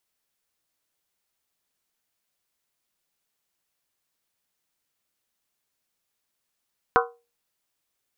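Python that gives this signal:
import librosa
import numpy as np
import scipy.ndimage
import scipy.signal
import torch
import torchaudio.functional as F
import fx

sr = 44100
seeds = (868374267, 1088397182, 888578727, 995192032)

y = fx.strike_skin(sr, length_s=0.63, level_db=-17, hz=473.0, decay_s=0.3, tilt_db=0.5, modes=7)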